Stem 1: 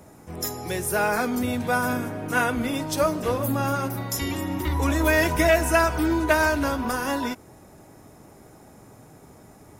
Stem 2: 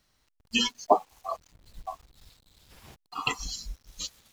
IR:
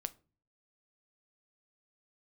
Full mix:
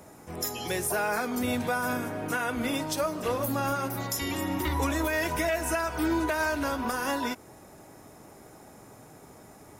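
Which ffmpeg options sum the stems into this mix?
-filter_complex "[0:a]lowshelf=f=260:g=-6.5,volume=1dB[a];[1:a]volume=-14dB[b];[a][b]amix=inputs=2:normalize=0,alimiter=limit=-18.5dB:level=0:latency=1:release=321"

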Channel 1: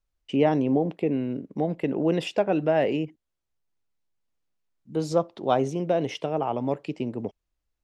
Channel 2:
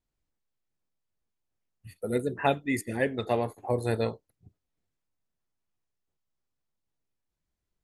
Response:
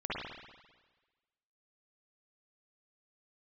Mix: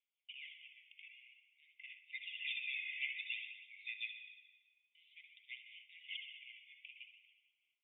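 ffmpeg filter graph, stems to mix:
-filter_complex "[0:a]asoftclip=type=tanh:threshold=-19dB,volume=-9.5dB,asplit=2[a][b];[b]volume=-7dB[c];[1:a]highpass=470,volume=0.5dB,asplit=3[d][e][f];[e]volume=-7.5dB[g];[f]apad=whole_len=345742[h];[a][h]sidechaincompress=threshold=-44dB:ratio=8:attack=37:release=1180[i];[2:a]atrim=start_sample=2205[j];[c][g]amix=inputs=2:normalize=0[k];[k][j]afir=irnorm=-1:irlink=0[l];[i][d][l]amix=inputs=3:normalize=0,afftfilt=real='re*lt(hypot(re,im),0.0891)':imag='im*lt(hypot(re,im),0.0891)':win_size=1024:overlap=0.75,aphaser=in_gain=1:out_gain=1:delay=3.2:decay=0.44:speed=0.52:type=sinusoidal,asuperpass=centerf=2700:order=20:qfactor=1.8"

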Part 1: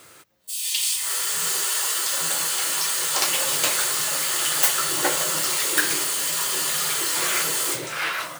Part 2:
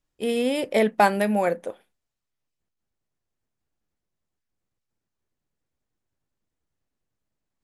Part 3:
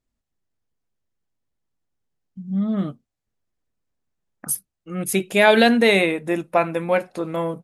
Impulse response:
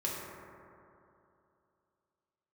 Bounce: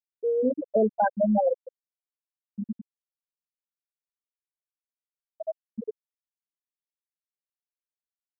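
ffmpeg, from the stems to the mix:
-filter_complex "[0:a]acrossover=split=140|3000[a][b][c];[b]acompressor=threshold=-27dB:ratio=3[d];[a][d][c]amix=inputs=3:normalize=0,adelay=2050,volume=-1.5dB[e];[1:a]acontrast=51,volume=-2.5dB[f];[2:a]acompressor=threshold=-16dB:ratio=6,aecho=1:1:4.8:0.94,volume=-9.5dB[g];[e][f][g]amix=inputs=3:normalize=0,afftfilt=real='re*gte(hypot(re,im),0.794)':imag='im*gte(hypot(re,im),0.794)':win_size=1024:overlap=0.75,alimiter=limit=-14.5dB:level=0:latency=1:release=49"

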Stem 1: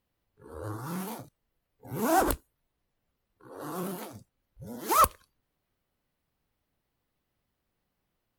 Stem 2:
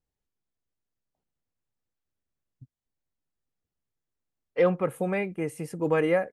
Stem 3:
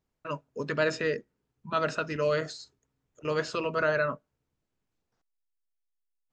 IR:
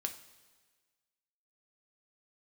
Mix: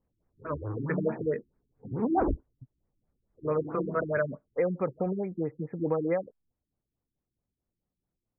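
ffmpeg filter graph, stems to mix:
-filter_complex "[0:a]tiltshelf=f=850:g=5,volume=-1.5dB,afade=t=out:st=3.63:d=0.35:silence=0.421697[a];[1:a]acompressor=threshold=-23dB:ratio=6,volume=0dB,asplit=2[b][c];[2:a]adelay=200,volume=1.5dB,asplit=3[d][e][f];[d]atrim=end=1.88,asetpts=PTS-STARTPTS,afade=t=out:st=1.876:d=0.004:c=hsin[g];[e]atrim=start=1.88:end=3.33,asetpts=PTS-STARTPTS,volume=0[h];[f]atrim=start=3.33,asetpts=PTS-STARTPTS,afade=t=in:d=0.004:c=hsin[i];[g][h][i]concat=n=3:v=0:a=1[j];[c]apad=whole_len=369687[k];[a][k]sidechaincompress=threshold=-51dB:ratio=8:attack=11:release=165[l];[l][b][j]amix=inputs=3:normalize=0,highshelf=f=2.5k:g=-7.5,afftfilt=real='re*lt(b*sr/1024,360*pow(2600/360,0.5+0.5*sin(2*PI*4.6*pts/sr)))':imag='im*lt(b*sr/1024,360*pow(2600/360,0.5+0.5*sin(2*PI*4.6*pts/sr)))':win_size=1024:overlap=0.75"

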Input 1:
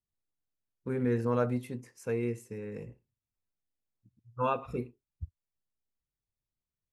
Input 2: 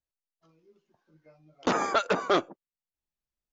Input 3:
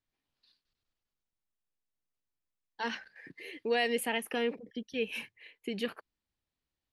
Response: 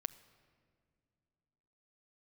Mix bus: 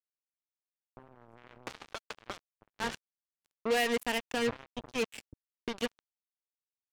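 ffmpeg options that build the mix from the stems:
-filter_complex "[0:a]alimiter=level_in=4dB:limit=-24dB:level=0:latency=1:release=30,volume=-4dB,adelay=100,volume=-2dB[a];[1:a]highpass=f=810:p=1,volume=-2dB[b];[2:a]lowpass=9.3k,volume=0.5dB[c];[a][b]amix=inputs=2:normalize=0,afwtdn=0.00501,acompressor=threshold=-35dB:ratio=12,volume=0dB[d];[c][d]amix=inputs=2:normalize=0,equalizer=f=4.3k:t=o:w=0.77:g=-2,acrusher=bits=4:mix=0:aa=0.5"

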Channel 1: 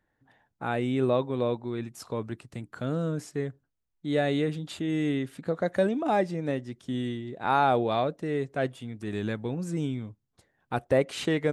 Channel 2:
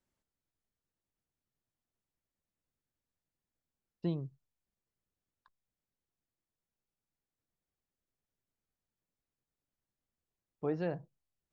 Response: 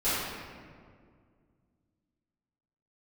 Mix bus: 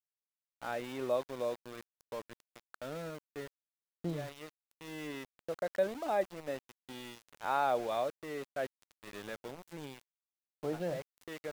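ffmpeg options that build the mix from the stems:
-filter_complex "[0:a]deesser=0.65,highpass=f=640:p=1,volume=-6.5dB[a];[1:a]highpass=f=54:p=1,volume=-3dB,asplit=2[b][c];[c]apad=whole_len=508303[d];[a][d]sidechaincompress=threshold=-47dB:ratio=4:attack=45:release=1090[e];[e][b]amix=inputs=2:normalize=0,lowpass=f=3.7k:p=1,equalizer=f=590:t=o:w=0.36:g=6,aeval=exprs='val(0)*gte(abs(val(0)),0.00668)':c=same"

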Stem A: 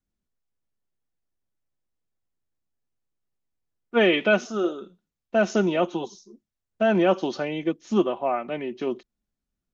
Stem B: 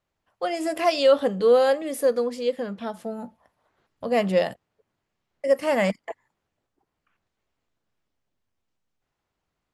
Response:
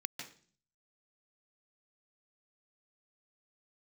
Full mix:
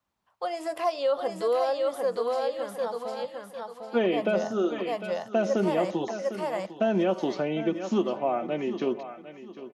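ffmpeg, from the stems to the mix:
-filter_complex "[0:a]bandreject=f=105.9:t=h:w=4,bandreject=f=211.8:t=h:w=4,bandreject=f=317.7:t=h:w=4,bandreject=f=423.6:t=h:w=4,bandreject=f=529.5:t=h:w=4,bandreject=f=635.4:t=h:w=4,bandreject=f=741.3:t=h:w=4,bandreject=f=847.2:t=h:w=4,bandreject=f=953.1:t=h:w=4,bandreject=f=1.059k:t=h:w=4,bandreject=f=1.1649k:t=h:w=4,bandreject=f=1.2708k:t=h:w=4,bandreject=f=1.3767k:t=h:w=4,bandreject=f=1.4826k:t=h:w=4,bandreject=f=1.5885k:t=h:w=4,bandreject=f=1.6944k:t=h:w=4,bandreject=f=1.8003k:t=h:w=4,bandreject=f=1.9062k:t=h:w=4,bandreject=f=2.0121k:t=h:w=4,bandreject=f=2.118k:t=h:w=4,bandreject=f=2.2239k:t=h:w=4,volume=1.5dB,asplit=2[a][b];[b]volume=-16dB[c];[1:a]equalizer=f=250:t=o:w=1:g=-9,equalizer=f=1k:t=o:w=1:g=10,equalizer=f=4k:t=o:w=1:g=5,volume=-6dB,asplit=2[d][e];[e]volume=-4.5dB[f];[c][f]amix=inputs=2:normalize=0,aecho=0:1:752|1504|2256|3008:1|0.31|0.0961|0.0298[g];[a][d][g]amix=inputs=3:normalize=0,highpass=72,acrossover=split=940|3600[h][i][j];[h]acompressor=threshold=-22dB:ratio=4[k];[i]acompressor=threshold=-42dB:ratio=4[l];[j]acompressor=threshold=-48dB:ratio=4[m];[k][l][m]amix=inputs=3:normalize=0"

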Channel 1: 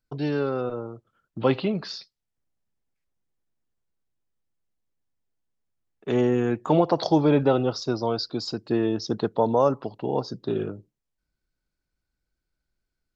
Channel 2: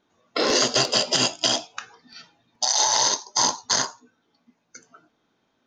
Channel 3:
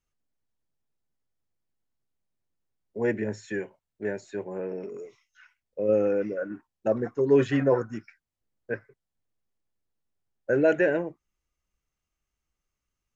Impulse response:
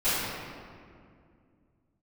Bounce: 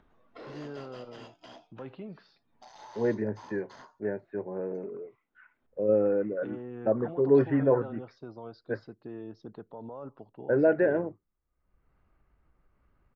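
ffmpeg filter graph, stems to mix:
-filter_complex "[0:a]alimiter=limit=-16.5dB:level=0:latency=1:release=50,adelay=350,volume=-15.5dB[a];[1:a]asoftclip=type=tanh:threshold=-21dB,volume=-18.5dB[b];[2:a]lowpass=1.6k,volume=-1dB[c];[a][b][c]amix=inputs=3:normalize=0,lowpass=2.1k,acompressor=mode=upward:threshold=-50dB:ratio=2.5"

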